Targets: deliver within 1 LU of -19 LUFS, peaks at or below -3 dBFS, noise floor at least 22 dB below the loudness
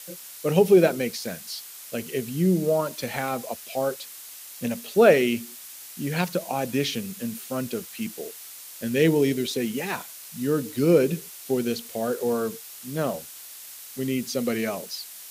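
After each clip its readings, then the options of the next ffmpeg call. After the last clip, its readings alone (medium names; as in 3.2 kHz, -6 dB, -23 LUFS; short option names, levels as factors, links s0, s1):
noise floor -42 dBFS; noise floor target -48 dBFS; loudness -25.5 LUFS; peak level -4.5 dBFS; loudness target -19.0 LUFS
-> -af "afftdn=nr=6:nf=-42"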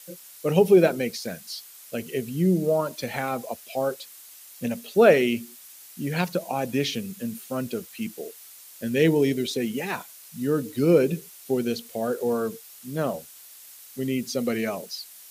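noise floor -47 dBFS; noise floor target -48 dBFS
-> -af "afftdn=nr=6:nf=-47"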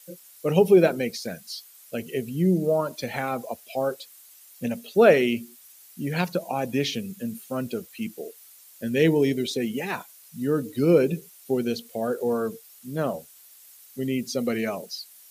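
noise floor -51 dBFS; loudness -25.5 LUFS; peak level -5.0 dBFS; loudness target -19.0 LUFS
-> -af "volume=2.11,alimiter=limit=0.708:level=0:latency=1"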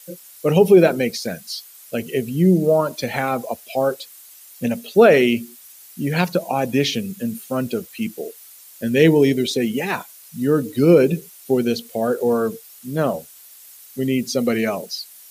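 loudness -19.5 LUFS; peak level -3.0 dBFS; noise floor -45 dBFS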